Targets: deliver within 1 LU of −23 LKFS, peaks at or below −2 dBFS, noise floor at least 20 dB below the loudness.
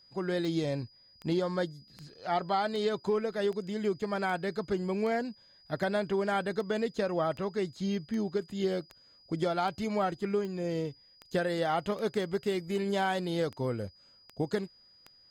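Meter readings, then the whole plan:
number of clicks 20; interfering tone 4,900 Hz; level of the tone −58 dBFS; integrated loudness −32.0 LKFS; sample peak −18.0 dBFS; target loudness −23.0 LKFS
→ click removal
notch filter 4,900 Hz, Q 30
level +9 dB

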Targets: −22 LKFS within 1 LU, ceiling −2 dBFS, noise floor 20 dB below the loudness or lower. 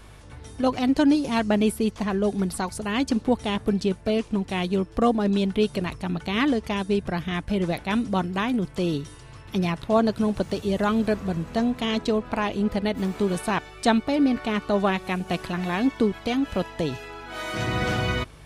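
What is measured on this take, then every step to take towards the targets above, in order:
mains hum 50 Hz; hum harmonics up to 150 Hz; level of the hum −46 dBFS; integrated loudness −25.0 LKFS; sample peak −8.5 dBFS; target loudness −22.0 LKFS
→ hum removal 50 Hz, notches 3
level +3 dB

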